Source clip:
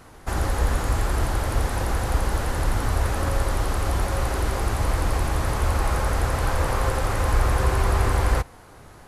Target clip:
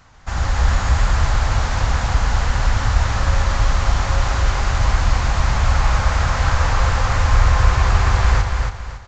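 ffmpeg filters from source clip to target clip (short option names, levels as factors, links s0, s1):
-filter_complex "[0:a]equalizer=f=370:t=o:w=1.3:g=-14,dynaudnorm=f=130:g=5:m=2.11,asplit=2[s0][s1];[s1]aecho=0:1:278|556|834|1112:0.596|0.191|0.061|0.0195[s2];[s0][s2]amix=inputs=2:normalize=0,aresample=16000,aresample=44100"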